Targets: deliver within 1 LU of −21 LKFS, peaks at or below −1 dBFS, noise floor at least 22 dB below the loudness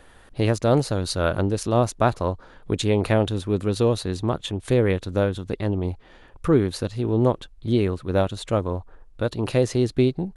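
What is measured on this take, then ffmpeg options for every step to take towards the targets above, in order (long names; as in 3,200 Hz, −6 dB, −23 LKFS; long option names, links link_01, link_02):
integrated loudness −23.5 LKFS; sample peak −6.5 dBFS; target loudness −21.0 LKFS
→ -af "volume=2.5dB"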